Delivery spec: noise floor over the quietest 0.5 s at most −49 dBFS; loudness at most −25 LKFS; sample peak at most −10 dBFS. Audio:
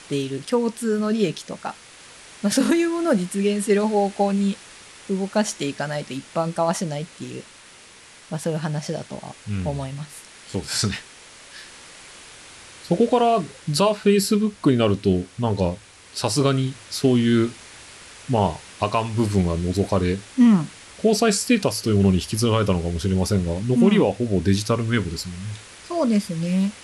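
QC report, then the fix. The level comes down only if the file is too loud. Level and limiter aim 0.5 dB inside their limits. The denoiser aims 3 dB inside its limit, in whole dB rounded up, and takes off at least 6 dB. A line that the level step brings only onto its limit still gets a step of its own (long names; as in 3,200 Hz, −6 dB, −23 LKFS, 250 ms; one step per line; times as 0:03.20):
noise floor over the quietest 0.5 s −47 dBFS: out of spec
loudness −22.0 LKFS: out of spec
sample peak −6.0 dBFS: out of spec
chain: level −3.5 dB
brickwall limiter −10.5 dBFS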